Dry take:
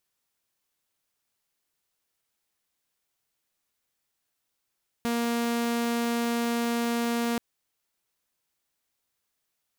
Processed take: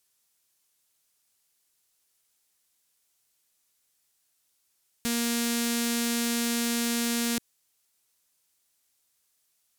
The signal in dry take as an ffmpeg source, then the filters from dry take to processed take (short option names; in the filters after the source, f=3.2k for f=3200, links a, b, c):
-f lavfi -i "aevalsrc='0.075*(2*mod(235*t,1)-1)':d=2.33:s=44100"
-filter_complex "[0:a]equalizer=f=9.3k:t=o:w=2.4:g=10.5,acrossover=split=340|1400|3700[a][b][c][d];[b]asoftclip=type=tanh:threshold=-40dB[e];[a][e][c][d]amix=inputs=4:normalize=0"